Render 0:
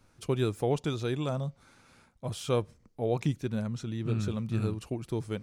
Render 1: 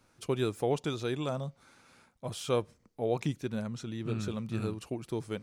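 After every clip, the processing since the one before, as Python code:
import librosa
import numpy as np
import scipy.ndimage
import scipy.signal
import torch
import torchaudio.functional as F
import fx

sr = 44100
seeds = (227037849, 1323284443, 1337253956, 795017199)

y = fx.low_shelf(x, sr, hz=120.0, db=-10.5)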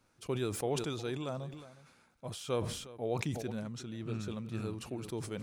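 y = x + 10.0 ** (-18.0 / 20.0) * np.pad(x, (int(361 * sr / 1000.0), 0))[:len(x)]
y = fx.sustainer(y, sr, db_per_s=59.0)
y = F.gain(torch.from_numpy(y), -5.0).numpy()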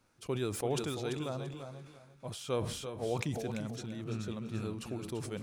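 y = fx.echo_feedback(x, sr, ms=339, feedback_pct=22, wet_db=-9.0)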